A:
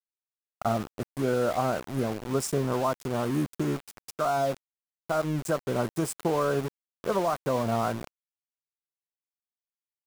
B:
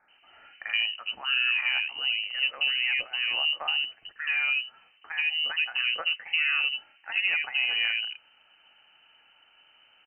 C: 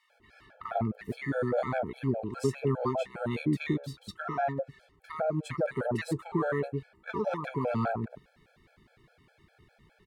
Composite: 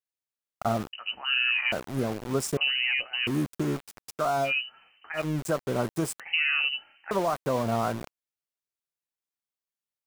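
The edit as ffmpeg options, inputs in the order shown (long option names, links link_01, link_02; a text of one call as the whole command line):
ffmpeg -i take0.wav -i take1.wav -filter_complex "[1:a]asplit=4[link_01][link_02][link_03][link_04];[0:a]asplit=5[link_05][link_06][link_07][link_08][link_09];[link_05]atrim=end=0.932[link_10];[link_01]atrim=start=0.928:end=1.722[link_11];[link_06]atrim=start=1.718:end=2.572[link_12];[link_02]atrim=start=2.568:end=3.272[link_13];[link_07]atrim=start=3.268:end=4.53[link_14];[link_03]atrim=start=4.43:end=5.23[link_15];[link_08]atrim=start=5.13:end=6.202[link_16];[link_04]atrim=start=6.198:end=7.112[link_17];[link_09]atrim=start=7.108[link_18];[link_10][link_11]acrossfade=duration=0.004:curve1=hsin:curve2=hsin[link_19];[link_19][link_12]acrossfade=duration=0.004:curve1=hsin:curve2=hsin[link_20];[link_20][link_13]acrossfade=duration=0.004:curve1=hsin:curve2=hsin[link_21];[link_21][link_14]acrossfade=duration=0.004:curve1=hsin:curve2=hsin[link_22];[link_22][link_15]acrossfade=duration=0.1:curve1=tri:curve2=tri[link_23];[link_23][link_16]acrossfade=duration=0.1:curve1=tri:curve2=tri[link_24];[link_24][link_17]acrossfade=duration=0.004:curve1=hsin:curve2=hsin[link_25];[link_25][link_18]acrossfade=duration=0.004:curve1=hsin:curve2=hsin" out.wav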